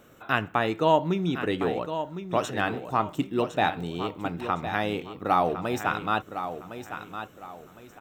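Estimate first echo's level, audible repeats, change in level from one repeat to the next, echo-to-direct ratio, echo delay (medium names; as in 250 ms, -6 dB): -10.0 dB, 3, -10.0 dB, -9.5 dB, 1059 ms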